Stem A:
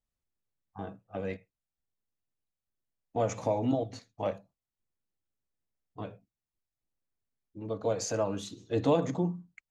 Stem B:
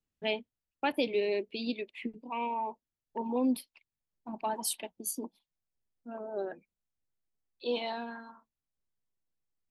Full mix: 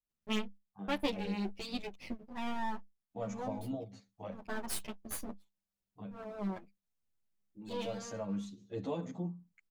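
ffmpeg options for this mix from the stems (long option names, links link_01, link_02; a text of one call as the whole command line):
ffmpeg -i stem1.wav -i stem2.wav -filter_complex "[0:a]volume=-9.5dB,asplit=2[link_01][link_02];[1:a]aeval=exprs='max(val(0),0)':channel_layout=same,adelay=50,volume=2dB[link_03];[link_02]apad=whole_len=430312[link_04];[link_03][link_04]sidechaincompress=threshold=-42dB:ratio=8:attack=6.1:release=390[link_05];[link_01][link_05]amix=inputs=2:normalize=0,equalizer=frequency=200:width=7.9:gain=14.5,asplit=2[link_06][link_07];[link_07]adelay=9.4,afreqshift=-0.43[link_08];[link_06][link_08]amix=inputs=2:normalize=1" out.wav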